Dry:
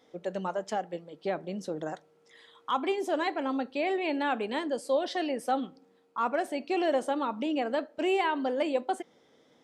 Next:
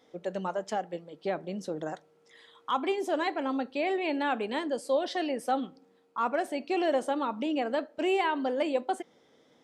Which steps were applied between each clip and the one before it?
nothing audible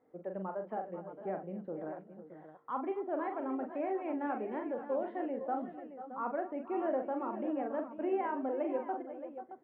Bessel low-pass 1200 Hz, order 6; tapped delay 42/256/489/506/621 ms -6.5/-19.5/-15/-14/-12 dB; gain -6.5 dB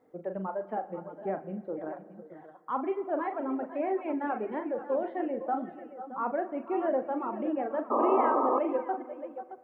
reverb removal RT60 1 s; painted sound noise, 7.9–8.59, 230–1300 Hz -32 dBFS; spring tank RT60 1.8 s, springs 36/60 ms, chirp 55 ms, DRR 14.5 dB; gain +5.5 dB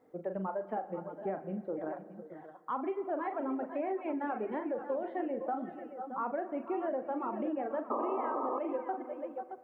compressor 6:1, threshold -31 dBFS, peak gain reduction 10.5 dB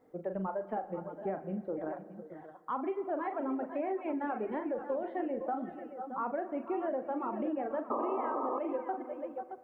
low shelf 72 Hz +10 dB

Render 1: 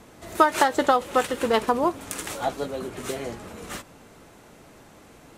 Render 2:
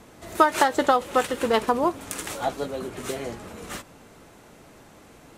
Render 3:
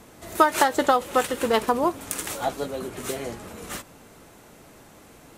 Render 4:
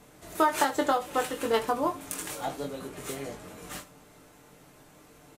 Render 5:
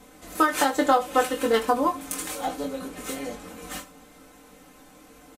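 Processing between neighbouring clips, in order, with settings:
nothing audible
high shelf 10000 Hz +8.5 dB
comb 6.7 ms, depth 40%; on a send: early reflections 22 ms -5.5 dB, 76 ms -16 dB; on the sum: gain -7 dB
comb 3.9 ms, depth 78%; gain +2 dB

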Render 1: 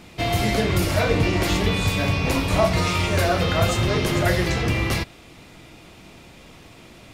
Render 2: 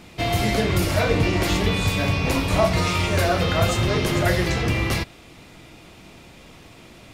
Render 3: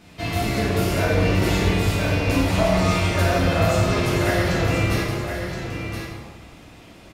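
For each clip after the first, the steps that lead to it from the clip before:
nothing audible
on a send: echo 1.022 s -7.5 dB; on the sum: plate-style reverb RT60 1.6 s, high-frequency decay 0.55×, DRR -5.5 dB; gain -7 dB

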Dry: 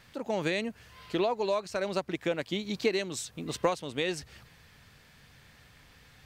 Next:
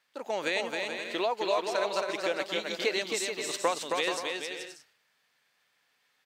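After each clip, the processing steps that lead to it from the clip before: gate -48 dBFS, range -17 dB; Bessel high-pass 590 Hz, order 2; bouncing-ball echo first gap 0.27 s, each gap 0.6×, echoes 5; gain +2.5 dB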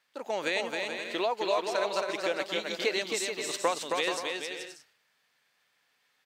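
nothing audible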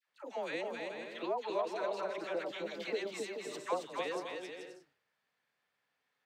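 high shelf 2200 Hz -11 dB; dispersion lows, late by 93 ms, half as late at 920 Hz; gain -5.5 dB

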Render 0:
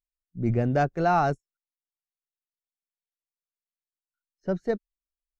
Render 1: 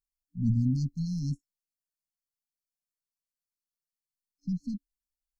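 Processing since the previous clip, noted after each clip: FFT band-reject 280–4100 Hz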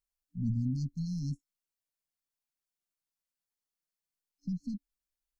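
compressor 1.5:1, threshold -38 dBFS, peak gain reduction 6 dB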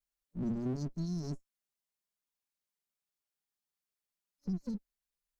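minimum comb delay 4.9 ms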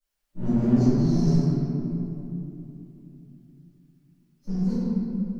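reverb RT60 3.0 s, pre-delay 3 ms, DRR -16.5 dB; gain -2.5 dB

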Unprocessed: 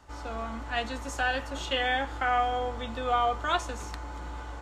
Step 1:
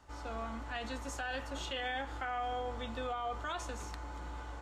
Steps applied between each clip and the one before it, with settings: limiter -24.5 dBFS, peak gain reduction 10 dB; gain -5 dB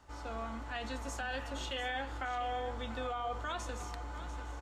echo 0.694 s -12.5 dB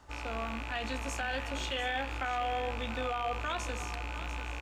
rattling part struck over -48 dBFS, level -32 dBFS; gain +3.5 dB

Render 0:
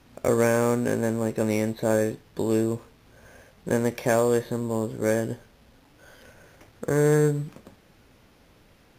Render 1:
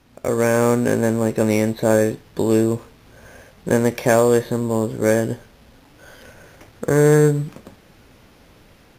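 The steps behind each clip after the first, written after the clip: AGC gain up to 7 dB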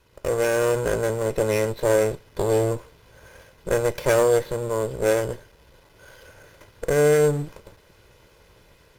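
minimum comb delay 2 ms; gain -3 dB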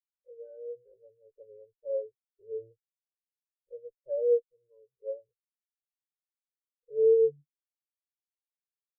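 spectral expander 4:1; gain -7 dB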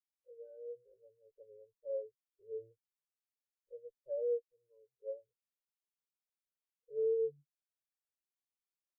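compressor 2:1, threshold -28 dBFS, peak gain reduction 5.5 dB; gain -6 dB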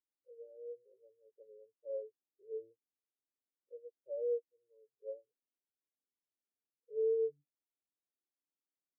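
ladder band-pass 330 Hz, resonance 45%; gain +11.5 dB

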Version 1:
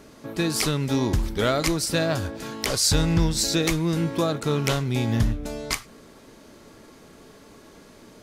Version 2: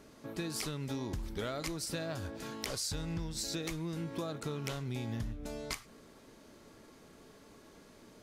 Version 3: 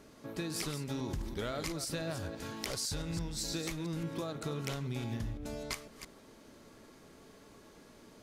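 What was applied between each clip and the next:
compressor, threshold -26 dBFS, peak gain reduction 10.5 dB; gain -8.5 dB
reverse delay 0.168 s, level -9 dB

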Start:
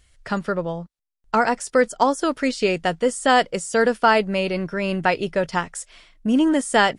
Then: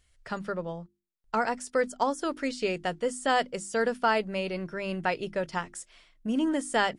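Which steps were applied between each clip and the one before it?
notches 50/100/150/200/250/300/350 Hz; gain -8.5 dB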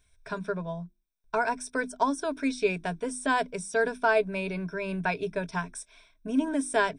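ripple EQ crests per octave 1.6, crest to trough 15 dB; gain -2 dB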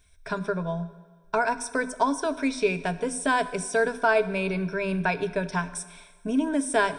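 in parallel at -1 dB: compressor, threshold -32 dBFS, peak gain reduction 12.5 dB; on the sum: plate-style reverb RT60 1.5 s, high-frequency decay 0.95×, DRR 13 dB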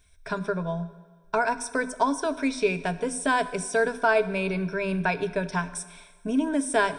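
nothing audible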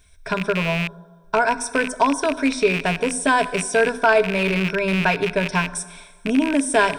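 rattling part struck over -38 dBFS, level -20 dBFS; in parallel at -8 dB: soft clip -19 dBFS, distortion -14 dB; on the sum: gain +3.5 dB

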